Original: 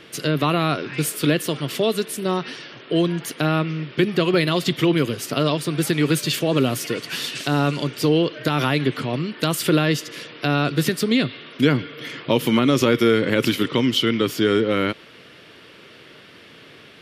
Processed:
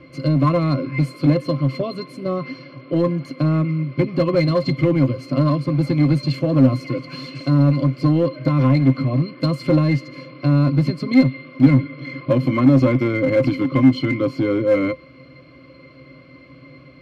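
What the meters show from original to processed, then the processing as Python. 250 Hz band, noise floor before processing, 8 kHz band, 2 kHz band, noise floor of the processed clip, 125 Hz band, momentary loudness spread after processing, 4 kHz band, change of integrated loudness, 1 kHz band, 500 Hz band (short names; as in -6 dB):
+3.5 dB, -46 dBFS, under -20 dB, -4.5 dB, -45 dBFS, +7.0 dB, 10 LU, -10.5 dB, +2.5 dB, -2.5 dB, 0.0 dB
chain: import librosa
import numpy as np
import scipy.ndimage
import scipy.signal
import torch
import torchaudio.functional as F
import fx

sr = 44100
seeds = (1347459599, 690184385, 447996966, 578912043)

p1 = fx.octave_resonator(x, sr, note='C', decay_s=0.1)
p2 = np.clip(p1, -10.0 ** (-27.5 / 20.0), 10.0 ** (-27.5 / 20.0))
p3 = p1 + F.gain(torch.from_numpy(p2), -4.0).numpy()
y = F.gain(torch.from_numpy(p3), 8.0).numpy()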